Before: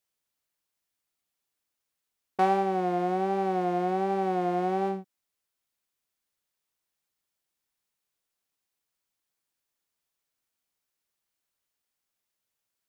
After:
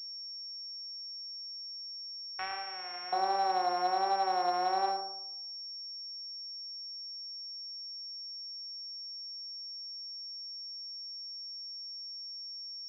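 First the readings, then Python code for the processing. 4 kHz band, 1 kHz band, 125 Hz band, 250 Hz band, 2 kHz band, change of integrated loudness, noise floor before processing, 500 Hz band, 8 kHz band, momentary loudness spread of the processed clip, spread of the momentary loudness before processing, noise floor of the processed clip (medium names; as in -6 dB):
+18.0 dB, -1.5 dB, under -25 dB, -16.0 dB, -1.0 dB, -8.5 dB, -85 dBFS, -9.0 dB, no reading, 10 LU, 5 LU, -43 dBFS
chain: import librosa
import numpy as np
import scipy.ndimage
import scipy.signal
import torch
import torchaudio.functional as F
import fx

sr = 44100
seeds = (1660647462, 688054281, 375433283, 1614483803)

y = fx.echo_bbd(x, sr, ms=112, stages=1024, feedback_pct=35, wet_db=-7.5)
y = fx.filter_lfo_highpass(y, sr, shape='square', hz=0.16, low_hz=820.0, high_hz=2100.0, q=1.1)
y = fx.pwm(y, sr, carrier_hz=5500.0)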